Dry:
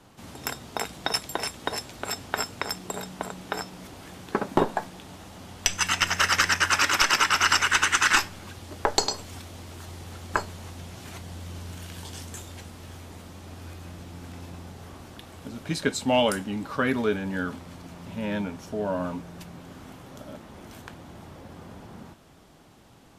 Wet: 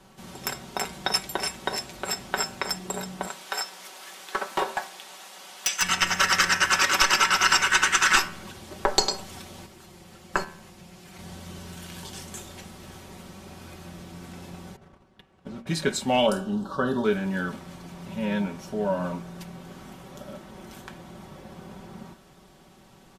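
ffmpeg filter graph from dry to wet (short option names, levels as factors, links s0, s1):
-filter_complex "[0:a]asettb=1/sr,asplit=3[s0][s1][s2];[s0]atrim=end=3.274[s3];[s1]atrim=start=3.27:end=5.82,asetpts=PTS-STARTPTS,afade=t=in:d=0.004:c=qsin,afade=t=out:st=2.546:d=0.004:c=qsin,highpass=460,tiltshelf=f=860:g=-5,volume=8.91,asoftclip=hard,volume=0.112[s4];[s2]atrim=start=5.816[s5];[s3][s4]acrossfade=d=0.004:c1=hsin:c2=qsin[s6];[s6][s5]acrossfade=d=0.004:c1=qsin:c2=hsin,asettb=1/sr,asplit=3[s7][s8][s9];[s7]atrim=end=9.664[s10];[s8]atrim=start=9.66:end=11.19,asetpts=PTS-STARTPTS,afade=t=in:d=0.004:c=qsin,afade=t=out:st=1.526:d=0.004:c=qsin,agate=range=0.447:threshold=0.0158:ratio=16:release=100:detection=peak,aecho=1:1:5.7:0.34,atrim=end_sample=67473[s11];[s9]atrim=start=11.186[s12];[s10][s11]acrossfade=d=0.004:c1=hsin:c2=qsin[s13];[s13][s12]acrossfade=d=0.004:c1=qsin:c2=hsin,asettb=1/sr,asplit=3[s14][s15][s16];[s14]atrim=end=14.764[s17];[s15]atrim=start=14.76:end=15.67,asetpts=PTS-STARTPTS,afade=t=in:d=0.004:c=qsin,afade=t=out:st=0.906:d=0.004:c=qsin,agate=range=0.158:threshold=0.00794:ratio=16:release=100:detection=peak,aemphasis=mode=reproduction:type=75kf[s18];[s16]atrim=start=15.666[s19];[s17][s18]acrossfade=d=0.004:c1=hsin:c2=qsin[s20];[s20][s19]acrossfade=d=0.004:c1=qsin:c2=hsin,asettb=1/sr,asplit=3[s21][s22][s23];[s21]atrim=end=16.264[s24];[s22]atrim=start=16.26:end=17.05,asetpts=PTS-STARTPTS,afade=t=in:d=0.004:c=qsin,afade=t=out:st=0.786:d=0.004:c=qsin,asuperstop=centerf=2200:order=4:qfactor=1.2,highshelf=f=6100:g=-9,asplit=2[s25][s26];[s26]adelay=49,volume=0.224[s27];[s25][s27]amix=inputs=2:normalize=0,atrim=end_sample=34839[s28];[s23]atrim=start=17.046[s29];[s24][s28]acrossfade=d=0.004:c1=hsin:c2=qsin[s30];[s30][s29]acrossfade=d=0.004:c1=qsin:c2=hsin,aecho=1:1:5.3:0.59,bandreject=f=77.69:t=h:w=4,bandreject=f=155.38:t=h:w=4,bandreject=f=233.07:t=h:w=4,bandreject=f=310.76:t=h:w=4,bandreject=f=388.45:t=h:w=4,bandreject=f=466.14:t=h:w=4,bandreject=f=543.83:t=h:w=4,bandreject=f=621.52:t=h:w=4,bandreject=f=699.21:t=h:w=4,bandreject=f=776.9:t=h:w=4,bandreject=f=854.59:t=h:w=4,bandreject=f=932.28:t=h:w=4,bandreject=f=1009.97:t=h:w=4,bandreject=f=1087.66:t=h:w=4,bandreject=f=1165.35:t=h:w=4,bandreject=f=1243.04:t=h:w=4,bandreject=f=1320.73:t=h:w=4,bandreject=f=1398.42:t=h:w=4,bandreject=f=1476.11:t=h:w=4,bandreject=f=1553.8:t=h:w=4,bandreject=f=1631.49:t=h:w=4,bandreject=f=1709.18:t=h:w=4,bandreject=f=1786.87:t=h:w=4,bandreject=f=1864.56:t=h:w=4,bandreject=f=1942.25:t=h:w=4,bandreject=f=2019.94:t=h:w=4,bandreject=f=2097.63:t=h:w=4,bandreject=f=2175.32:t=h:w=4,bandreject=f=2253.01:t=h:w=4,bandreject=f=2330.7:t=h:w=4,bandreject=f=2408.39:t=h:w=4,bandreject=f=2486.08:t=h:w=4,bandreject=f=2563.77:t=h:w=4,bandreject=f=2641.46:t=h:w=4,bandreject=f=2719.15:t=h:w=4,bandreject=f=2796.84:t=h:w=4,bandreject=f=2874.53:t=h:w=4,bandreject=f=2952.22:t=h:w=4,bandreject=f=3029.91:t=h:w=4"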